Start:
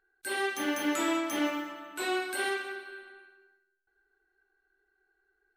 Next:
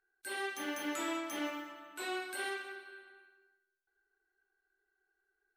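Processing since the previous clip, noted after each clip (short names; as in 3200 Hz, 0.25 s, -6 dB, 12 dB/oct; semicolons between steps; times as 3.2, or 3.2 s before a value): low shelf 320 Hz -5 dB; gain -6.5 dB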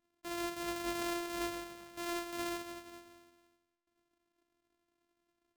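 sample sorter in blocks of 128 samples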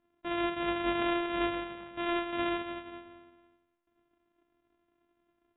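brick-wall FIR low-pass 3800 Hz; mismatched tape noise reduction decoder only; gain +7.5 dB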